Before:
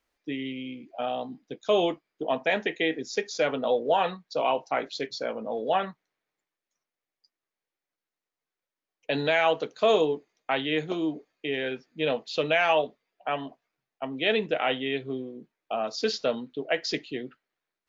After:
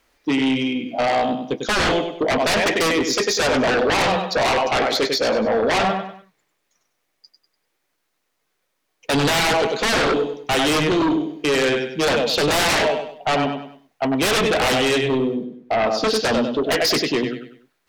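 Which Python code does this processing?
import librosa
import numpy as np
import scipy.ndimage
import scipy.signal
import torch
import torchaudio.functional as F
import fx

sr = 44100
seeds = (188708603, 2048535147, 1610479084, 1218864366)

y = 10.0 ** (-18.5 / 20.0) * np.tanh(x / 10.0 ** (-18.5 / 20.0))
y = fx.high_shelf(y, sr, hz=fx.line((15.34, 2500.0), (16.14, 3300.0)), db=-12.0, at=(15.34, 16.14), fade=0.02)
y = fx.echo_feedback(y, sr, ms=98, feedback_pct=35, wet_db=-7.0)
y = fx.fold_sine(y, sr, drive_db=12, ceiling_db=-15.0)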